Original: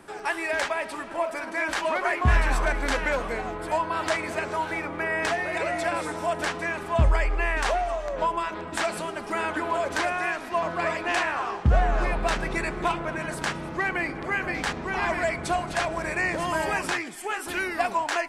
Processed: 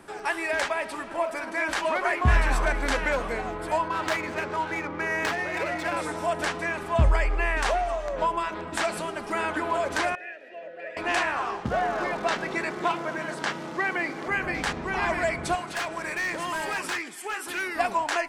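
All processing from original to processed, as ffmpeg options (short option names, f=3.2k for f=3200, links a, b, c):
-filter_complex "[0:a]asettb=1/sr,asplit=3[a][b][c];[a]atrim=end=3.884[d];[b]atrim=start=3.88:end=5.97,asetpts=PTS-STARTPTS,afade=t=in:d=0.004:c=qsin,afade=t=out:st=2.086:d=0.004:c=qsin,highpass=61,adynamicsmooth=sensitivity=7.5:basefreq=2.8k,bandreject=f=670:w=11[e];[c]atrim=start=5.966[f];[d][e]acrossfade=d=0.004:c1=hsin:c2=qsin[g];[g][f]acrossfade=d=0.004:c1=qsin:c2=hsin,asettb=1/sr,asplit=3[h][i][j];[h]atrim=end=10.154[k];[i]atrim=start=10.15:end=10.97,asetpts=PTS-STARTPTS,afade=t=in:d=0.004:c=qsin,afade=t=out:st=0.816:d=0.004:c=qsin,asplit=3[l][m][n];[l]bandpass=f=530:t=q:w=8,volume=0dB[o];[m]bandpass=f=1.84k:t=q:w=8,volume=-6dB[p];[n]bandpass=f=2.48k:t=q:w=8,volume=-9dB[q];[o][p][q]amix=inputs=3:normalize=0,acompressor=mode=upward:threshold=-41dB:ratio=2.5:attack=3.2:release=140:knee=2.83:detection=peak[r];[j]atrim=start=10.966[s];[k][r]acrossfade=d=0.004:c1=hsin:c2=qsin[t];[t][s]acrossfade=d=0.004:c1=qsin:c2=hsin,asettb=1/sr,asplit=3[u][v][w];[u]atrim=end=11.654[x];[v]atrim=start=11.65:end=14.28,asetpts=PTS-STARTPTS,afade=t=in:d=0.004:c=qsin,afade=t=out:st=2.626:d=0.004:c=qsin,bandreject=f=2.5k:w=20,acrusher=bits=8:dc=4:mix=0:aa=0.000001,highpass=200,lowpass=6.4k[y];[w]atrim=start=14.276[z];[x][y]acrossfade=d=0.004:c1=hsin:c2=qsin[aa];[aa][z]acrossfade=d=0.004:c1=qsin:c2=hsin,asettb=1/sr,asplit=3[ab][ac][ad];[ab]atrim=end=15.554[ae];[ac]atrim=start=15.55:end=17.76,asetpts=PTS-STARTPTS,afade=t=in:d=0.004:c=qsin,afade=t=out:st=2.206:d=0.004:c=qsin,highpass=f=350:p=1,equalizer=f=670:t=o:w=0.63:g=-5,asoftclip=type=hard:threshold=-25dB[af];[ad]atrim=start=17.756[ag];[ae][af]acrossfade=d=0.004:c1=hsin:c2=qsin[ah];[ah][ag]acrossfade=d=0.004:c1=qsin:c2=hsin"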